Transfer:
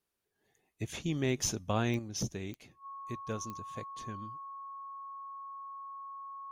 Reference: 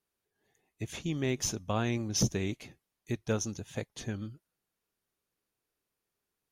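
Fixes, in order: de-click; notch 1100 Hz, Q 30; gain 0 dB, from 1.99 s +7.5 dB

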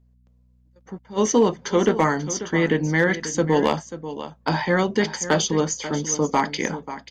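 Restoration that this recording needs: clip repair -9 dBFS; de-hum 61.5 Hz, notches 4; inverse comb 0.538 s -13 dB

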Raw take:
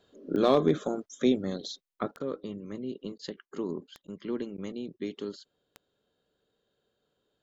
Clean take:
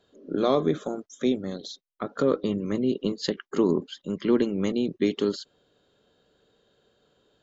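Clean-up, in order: clip repair -12.5 dBFS; de-click; interpolate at 2.19/3.18/4.07/4.57, 10 ms; gain correction +11.5 dB, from 2.11

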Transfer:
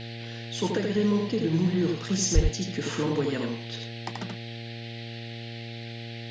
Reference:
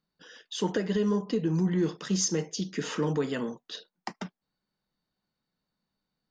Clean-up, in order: de-hum 116 Hz, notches 7; de-plosive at 2.34; noise print and reduce 30 dB; inverse comb 82 ms -4 dB

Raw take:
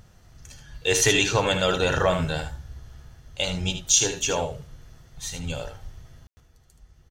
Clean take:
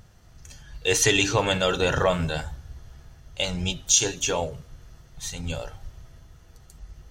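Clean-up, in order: room tone fill 6.27–6.37; inverse comb 76 ms -9 dB; gain 0 dB, from 6.4 s +8 dB

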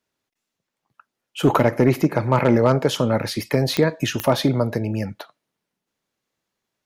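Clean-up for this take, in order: clip repair -7.5 dBFS; de-click

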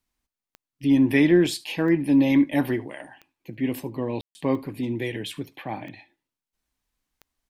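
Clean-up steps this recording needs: de-click; room tone fill 4.21–4.35; inverse comb 73 ms -22 dB

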